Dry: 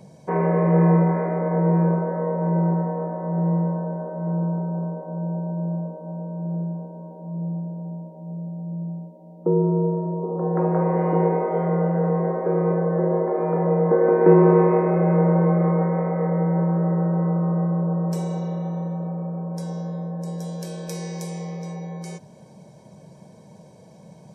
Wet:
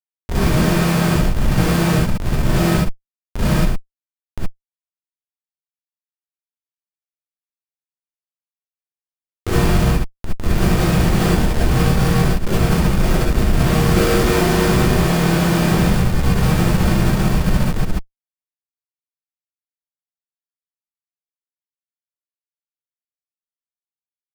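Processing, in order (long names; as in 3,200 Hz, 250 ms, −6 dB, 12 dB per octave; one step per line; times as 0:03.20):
comparator with hysteresis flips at −17 dBFS
reverb whose tail is shaped and stops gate 90 ms rising, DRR −7.5 dB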